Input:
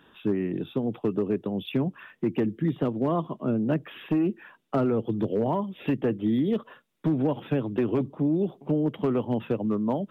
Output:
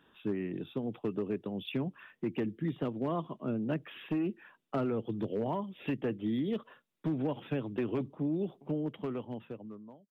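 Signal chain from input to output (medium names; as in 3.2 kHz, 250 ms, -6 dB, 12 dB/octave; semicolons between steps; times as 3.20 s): fade out at the end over 1.51 s; dynamic bell 2.7 kHz, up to +5 dB, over -47 dBFS, Q 0.82; trim -8 dB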